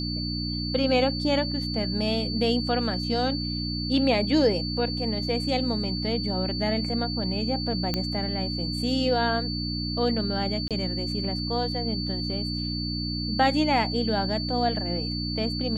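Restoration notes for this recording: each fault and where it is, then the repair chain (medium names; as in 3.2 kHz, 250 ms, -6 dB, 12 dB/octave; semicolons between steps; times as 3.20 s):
hum 60 Hz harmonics 5 -31 dBFS
whine 4.5 kHz -32 dBFS
7.94 s: pop -12 dBFS
10.68–10.71 s: dropout 27 ms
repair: de-click; band-stop 4.5 kHz, Q 30; de-hum 60 Hz, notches 5; interpolate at 10.68 s, 27 ms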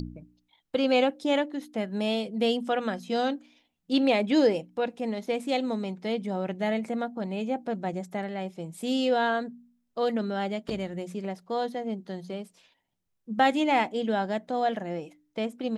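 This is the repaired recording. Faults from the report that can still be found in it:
nothing left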